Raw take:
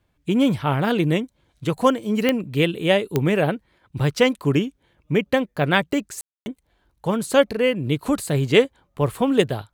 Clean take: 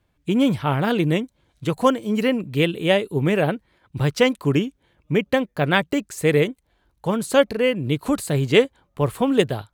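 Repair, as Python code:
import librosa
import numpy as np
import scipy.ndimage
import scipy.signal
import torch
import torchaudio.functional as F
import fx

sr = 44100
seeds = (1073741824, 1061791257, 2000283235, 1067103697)

y = fx.fix_declick_ar(x, sr, threshold=10.0)
y = fx.fix_ambience(y, sr, seeds[0], print_start_s=4.62, print_end_s=5.12, start_s=6.21, end_s=6.46)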